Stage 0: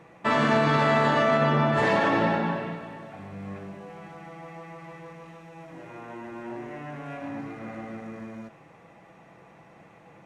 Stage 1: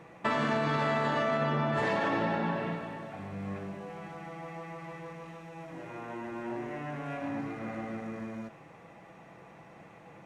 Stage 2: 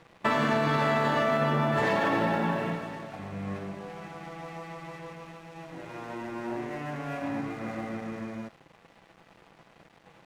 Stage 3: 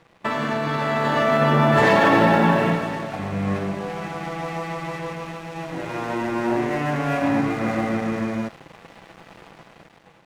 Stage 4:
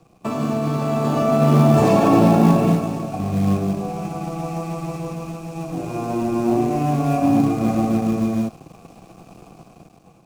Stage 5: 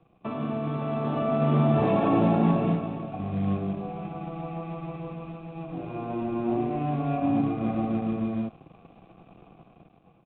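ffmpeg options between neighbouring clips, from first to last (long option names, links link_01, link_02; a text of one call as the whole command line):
ffmpeg -i in.wav -af "acompressor=threshold=-27dB:ratio=4" out.wav
ffmpeg -i in.wav -af "aeval=exprs='sgn(val(0))*max(abs(val(0))-0.00251,0)':channel_layout=same,volume=4dB" out.wav
ffmpeg -i in.wav -af "dynaudnorm=framelen=860:gausssize=3:maxgain=12dB" out.wav
ffmpeg -i in.wav -filter_complex "[0:a]acrossover=split=240|450|5100[link_01][link_02][link_03][link_04];[link_01]acrusher=bits=5:mode=log:mix=0:aa=0.000001[link_05];[link_03]asplit=3[link_06][link_07][link_08];[link_06]bandpass=frequency=730:width_type=q:width=8,volume=0dB[link_09];[link_07]bandpass=frequency=1090:width_type=q:width=8,volume=-6dB[link_10];[link_08]bandpass=frequency=2440:width_type=q:width=8,volume=-9dB[link_11];[link_09][link_10][link_11]amix=inputs=3:normalize=0[link_12];[link_05][link_02][link_12][link_04]amix=inputs=4:normalize=0,volume=6dB" out.wav
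ffmpeg -i in.wav -af "aresample=8000,aresample=44100,volume=-8dB" out.wav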